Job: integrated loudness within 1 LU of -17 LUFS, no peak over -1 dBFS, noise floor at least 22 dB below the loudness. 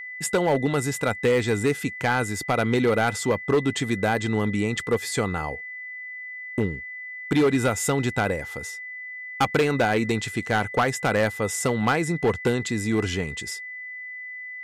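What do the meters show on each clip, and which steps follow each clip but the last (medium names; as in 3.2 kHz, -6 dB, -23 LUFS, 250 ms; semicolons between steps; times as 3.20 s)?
clipped samples 1.5%; clipping level -15.0 dBFS; steady tone 2 kHz; tone level -34 dBFS; loudness -25.0 LUFS; peak level -15.0 dBFS; loudness target -17.0 LUFS
-> clip repair -15 dBFS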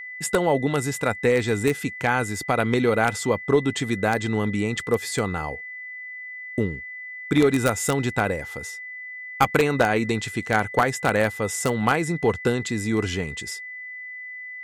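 clipped samples 0.0%; steady tone 2 kHz; tone level -34 dBFS
-> band-stop 2 kHz, Q 30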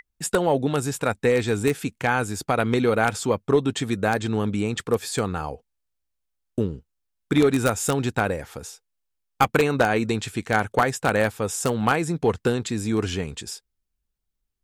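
steady tone not found; loudness -23.5 LUFS; peak level -5.5 dBFS; loudness target -17.0 LUFS
-> trim +6.5 dB; peak limiter -1 dBFS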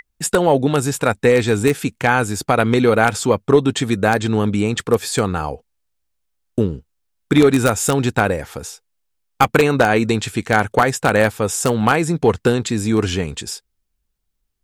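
loudness -17.5 LUFS; peak level -1.0 dBFS; noise floor -72 dBFS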